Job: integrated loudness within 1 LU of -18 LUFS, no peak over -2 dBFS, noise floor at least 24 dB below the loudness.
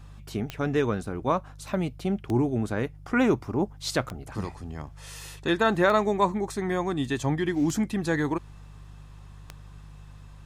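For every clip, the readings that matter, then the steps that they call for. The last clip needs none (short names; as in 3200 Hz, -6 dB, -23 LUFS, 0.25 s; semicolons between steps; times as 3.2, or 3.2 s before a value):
clicks 6; hum 50 Hz; harmonics up to 150 Hz; hum level -43 dBFS; loudness -27.0 LUFS; peak -10.0 dBFS; loudness target -18.0 LUFS
-> de-click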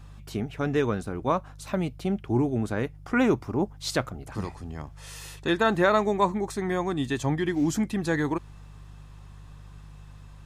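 clicks 0; hum 50 Hz; harmonics up to 150 Hz; hum level -43 dBFS
-> de-hum 50 Hz, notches 3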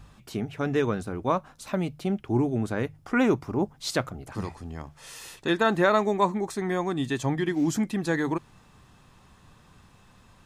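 hum none; loudness -27.5 LUFS; peak -10.0 dBFS; loudness target -18.0 LUFS
-> gain +9.5 dB; limiter -2 dBFS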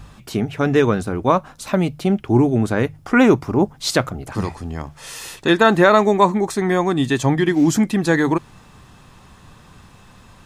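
loudness -18.0 LUFS; peak -2.0 dBFS; noise floor -47 dBFS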